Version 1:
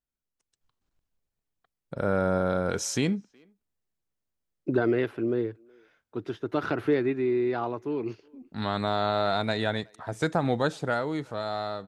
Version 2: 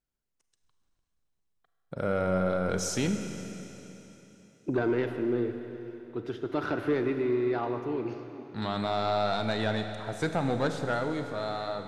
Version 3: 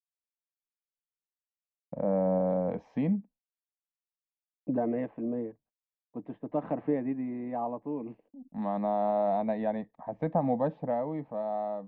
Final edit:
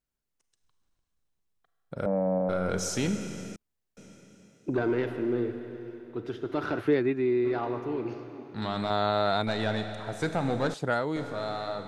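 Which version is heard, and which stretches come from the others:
2
2.06–2.49 from 3
3.56–3.97 from 1
6.81–7.45 from 1
8.9–9.47 from 1
10.74–11.16 from 1

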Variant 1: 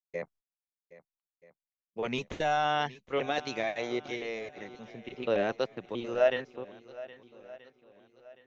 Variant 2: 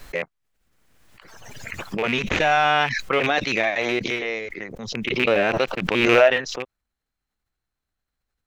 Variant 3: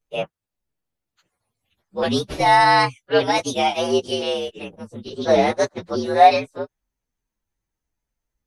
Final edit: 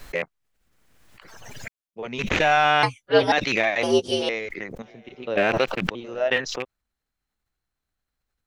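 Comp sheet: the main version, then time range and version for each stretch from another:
2
1.68–2.19 from 1
2.83–3.32 from 3
3.83–4.29 from 3
4.82–5.37 from 1
5.9–6.31 from 1

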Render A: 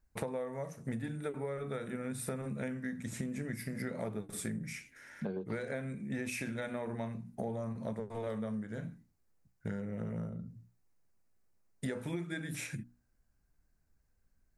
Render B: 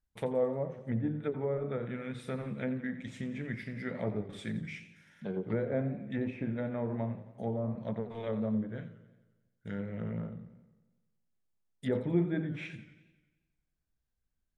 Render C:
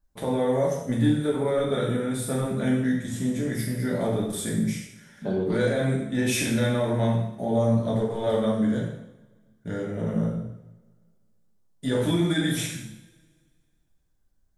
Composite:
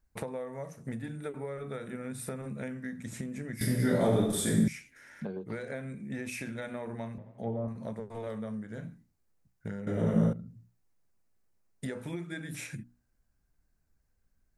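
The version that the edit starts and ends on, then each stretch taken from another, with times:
A
3.61–4.68 from C
7.18–7.68 from B
9.87–10.33 from C

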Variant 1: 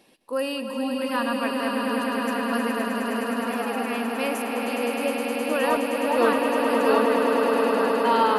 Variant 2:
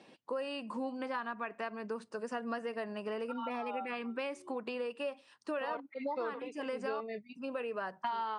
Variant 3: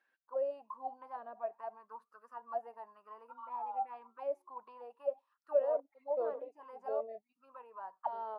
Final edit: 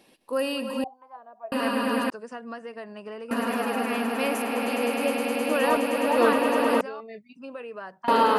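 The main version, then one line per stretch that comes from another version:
1
0.84–1.52 from 3
2.1–3.31 from 2
6.81–8.08 from 2

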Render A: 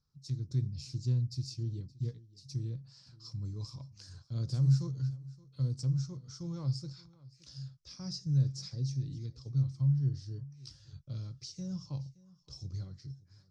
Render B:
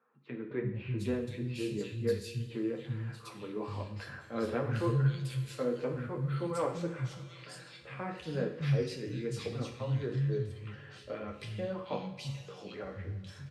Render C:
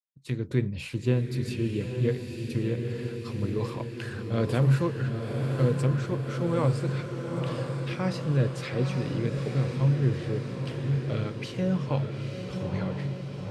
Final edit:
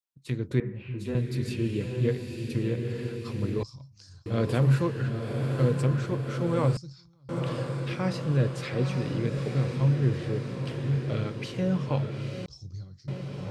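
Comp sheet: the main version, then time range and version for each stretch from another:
C
0.6–1.15 from B
3.63–4.26 from A
6.77–7.29 from A
12.46–13.08 from A

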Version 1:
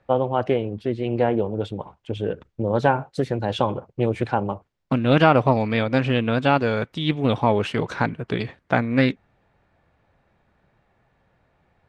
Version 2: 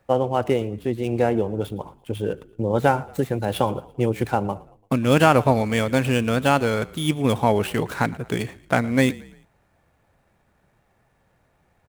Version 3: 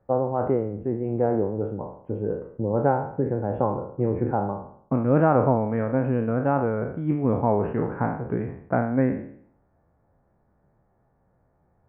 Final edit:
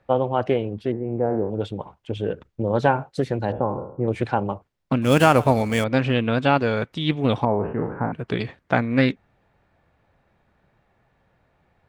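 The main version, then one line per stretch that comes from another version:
1
0.92–1.5 from 3
3.52–4.08 from 3
5.02–5.84 from 2
7.45–8.12 from 3

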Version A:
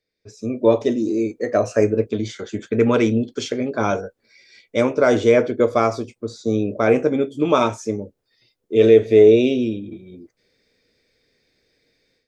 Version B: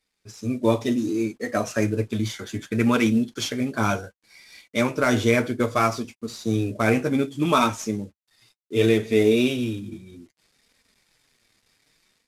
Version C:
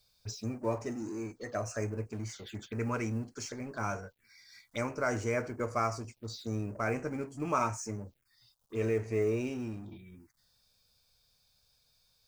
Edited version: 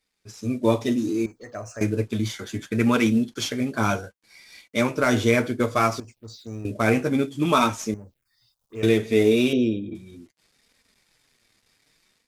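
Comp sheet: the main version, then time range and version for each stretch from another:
B
1.26–1.81 from C
6–6.65 from C
7.94–8.83 from C
9.53–9.95 from A

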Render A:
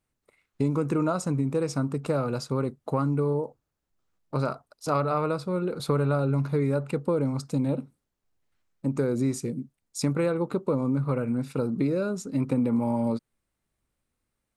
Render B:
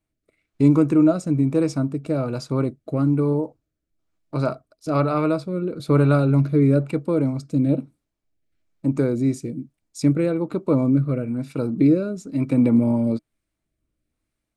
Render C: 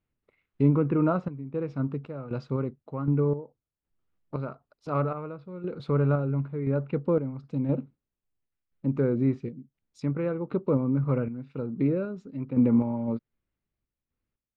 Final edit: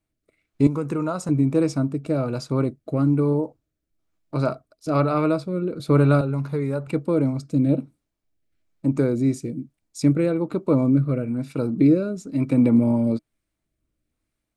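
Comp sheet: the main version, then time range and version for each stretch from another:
B
0.67–1.29 from A
6.21–6.87 from A
not used: C

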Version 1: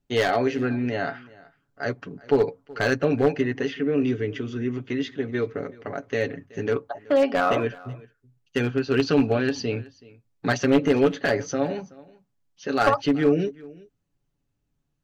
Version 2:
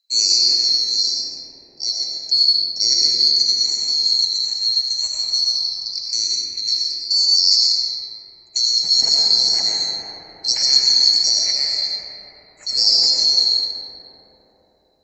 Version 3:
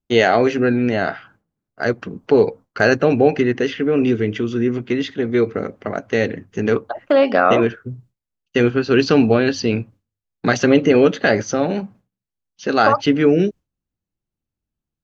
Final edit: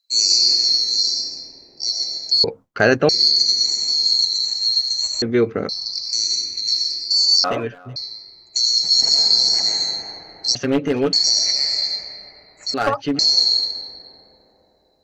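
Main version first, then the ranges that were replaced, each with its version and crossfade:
2
2.44–3.09 from 3
5.22–5.69 from 3
7.44–7.96 from 1
10.55–11.13 from 1
12.74–13.19 from 1

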